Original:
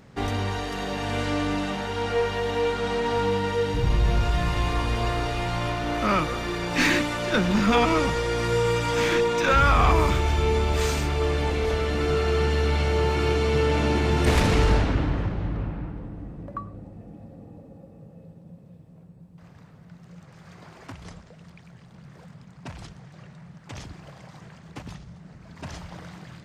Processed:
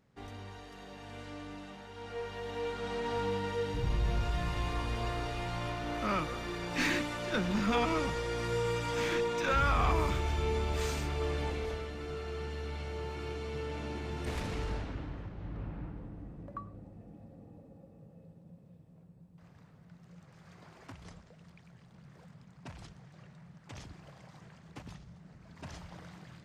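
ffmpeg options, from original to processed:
ffmpeg -i in.wav -af "volume=-1.5dB,afade=type=in:start_time=1.92:duration=1.21:silence=0.334965,afade=type=out:start_time=11.44:duration=0.5:silence=0.446684,afade=type=in:start_time=15.33:duration=0.51:silence=0.398107" out.wav

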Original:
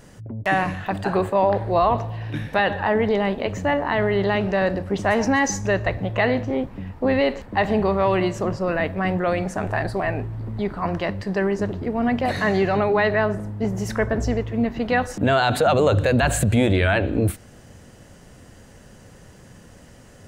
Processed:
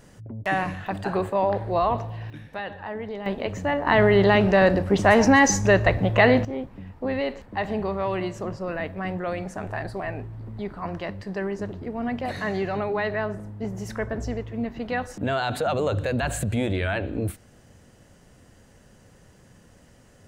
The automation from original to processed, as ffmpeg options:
ffmpeg -i in.wav -af "asetnsamples=nb_out_samples=441:pad=0,asendcmd='2.3 volume volume -13dB;3.26 volume volume -3.5dB;3.87 volume volume 3.5dB;6.45 volume volume -7dB',volume=-4dB" out.wav

